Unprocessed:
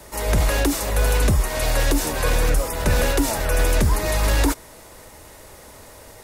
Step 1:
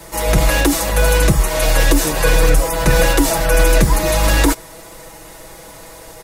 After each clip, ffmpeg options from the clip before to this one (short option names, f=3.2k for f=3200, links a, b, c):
-af "aecho=1:1:6.1:0.76,volume=4.5dB"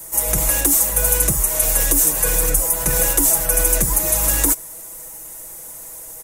-af "aexciter=amount=8.7:drive=2.5:freq=6.3k,volume=-9.5dB"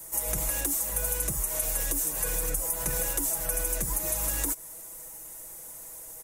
-af "acompressor=threshold=-17dB:ratio=6,volume=-8dB"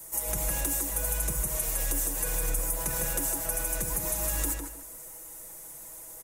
-filter_complex "[0:a]asplit=2[a][b];[b]adelay=153,lowpass=f=3.1k:p=1,volume=-3dB,asplit=2[c][d];[d]adelay=153,lowpass=f=3.1k:p=1,volume=0.28,asplit=2[e][f];[f]adelay=153,lowpass=f=3.1k:p=1,volume=0.28,asplit=2[g][h];[h]adelay=153,lowpass=f=3.1k:p=1,volume=0.28[i];[a][c][e][g][i]amix=inputs=5:normalize=0,volume=-1.5dB"